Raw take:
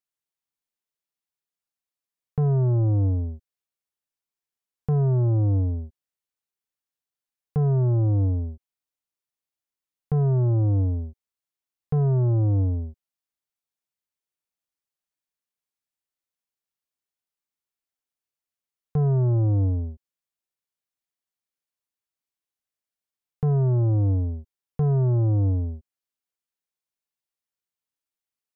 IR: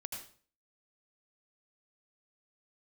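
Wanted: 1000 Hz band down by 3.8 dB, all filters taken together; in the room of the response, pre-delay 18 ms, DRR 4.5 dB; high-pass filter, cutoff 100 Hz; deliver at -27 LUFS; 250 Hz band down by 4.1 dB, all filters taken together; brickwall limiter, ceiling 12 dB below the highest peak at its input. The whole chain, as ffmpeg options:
-filter_complex "[0:a]highpass=100,equalizer=f=250:t=o:g=-7.5,equalizer=f=1k:t=o:g=-5,alimiter=level_in=6dB:limit=-24dB:level=0:latency=1,volume=-6dB,asplit=2[a][b];[1:a]atrim=start_sample=2205,adelay=18[c];[b][c]afir=irnorm=-1:irlink=0,volume=-3dB[d];[a][d]amix=inputs=2:normalize=0,volume=10dB"

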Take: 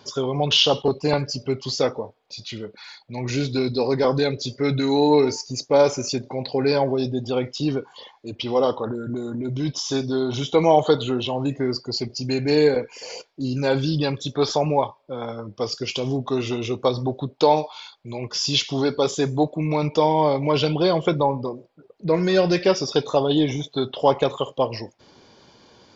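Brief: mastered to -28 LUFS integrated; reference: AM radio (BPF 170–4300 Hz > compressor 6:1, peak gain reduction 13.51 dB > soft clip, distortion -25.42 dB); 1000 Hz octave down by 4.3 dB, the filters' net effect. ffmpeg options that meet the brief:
-af "highpass=170,lowpass=4.3k,equalizer=f=1k:t=o:g=-5.5,acompressor=threshold=-27dB:ratio=6,asoftclip=threshold=-18dB,volume=4.5dB"

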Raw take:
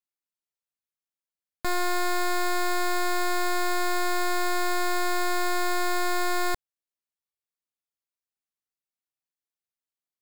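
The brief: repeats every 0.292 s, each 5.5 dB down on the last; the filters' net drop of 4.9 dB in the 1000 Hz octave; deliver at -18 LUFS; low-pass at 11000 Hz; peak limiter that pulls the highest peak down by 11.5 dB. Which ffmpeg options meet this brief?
-af "lowpass=11k,equalizer=f=1k:t=o:g=-7.5,alimiter=level_in=8.5dB:limit=-24dB:level=0:latency=1,volume=-8.5dB,aecho=1:1:292|584|876|1168|1460|1752|2044:0.531|0.281|0.149|0.079|0.0419|0.0222|0.0118,volume=20.5dB"

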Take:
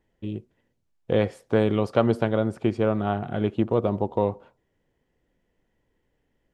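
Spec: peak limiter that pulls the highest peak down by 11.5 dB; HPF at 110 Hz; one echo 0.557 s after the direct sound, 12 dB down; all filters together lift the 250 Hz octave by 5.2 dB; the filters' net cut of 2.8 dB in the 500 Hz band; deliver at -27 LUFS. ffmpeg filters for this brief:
-af "highpass=110,equalizer=f=250:t=o:g=8.5,equalizer=f=500:t=o:g=-6,alimiter=limit=-17.5dB:level=0:latency=1,aecho=1:1:557:0.251,volume=1.5dB"

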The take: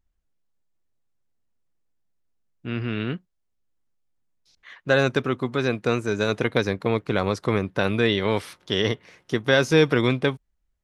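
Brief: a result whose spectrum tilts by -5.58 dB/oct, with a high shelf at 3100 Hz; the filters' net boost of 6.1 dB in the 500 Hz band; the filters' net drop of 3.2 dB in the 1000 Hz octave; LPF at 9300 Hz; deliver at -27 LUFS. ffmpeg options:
-af "lowpass=9.3k,equalizer=f=500:t=o:g=8.5,equalizer=f=1k:t=o:g=-7,highshelf=f=3.1k:g=-6,volume=-7dB"

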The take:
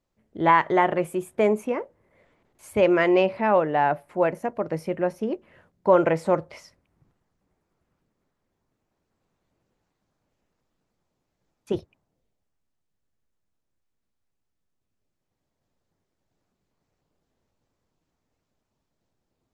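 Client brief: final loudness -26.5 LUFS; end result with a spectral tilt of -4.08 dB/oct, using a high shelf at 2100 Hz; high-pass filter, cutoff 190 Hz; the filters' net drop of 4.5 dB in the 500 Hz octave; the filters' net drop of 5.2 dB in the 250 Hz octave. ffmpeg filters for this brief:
-af "highpass=190,equalizer=f=250:t=o:g=-4.5,equalizer=f=500:t=o:g=-4,highshelf=f=2.1k:g=-4.5,volume=0.5dB"

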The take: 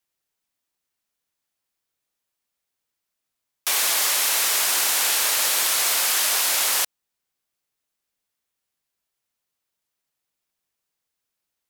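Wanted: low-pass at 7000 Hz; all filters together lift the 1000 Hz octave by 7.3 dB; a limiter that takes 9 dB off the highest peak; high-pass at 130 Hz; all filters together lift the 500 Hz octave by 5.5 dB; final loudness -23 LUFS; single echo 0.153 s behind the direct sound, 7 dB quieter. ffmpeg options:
-af "highpass=130,lowpass=7k,equalizer=f=500:t=o:g=4,equalizer=f=1k:t=o:g=8,alimiter=limit=-18dB:level=0:latency=1,aecho=1:1:153:0.447,volume=2dB"

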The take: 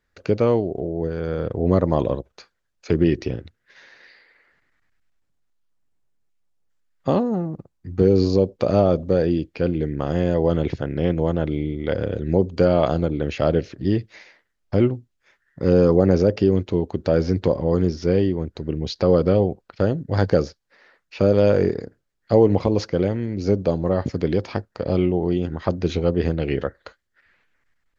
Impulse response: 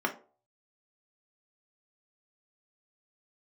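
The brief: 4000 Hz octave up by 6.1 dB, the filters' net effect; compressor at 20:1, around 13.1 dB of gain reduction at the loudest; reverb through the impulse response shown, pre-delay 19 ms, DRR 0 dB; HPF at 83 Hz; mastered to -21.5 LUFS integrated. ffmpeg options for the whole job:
-filter_complex "[0:a]highpass=83,equalizer=f=4k:t=o:g=7.5,acompressor=threshold=-24dB:ratio=20,asplit=2[a][b];[1:a]atrim=start_sample=2205,adelay=19[c];[b][c]afir=irnorm=-1:irlink=0,volume=-9dB[d];[a][d]amix=inputs=2:normalize=0,volume=6.5dB"

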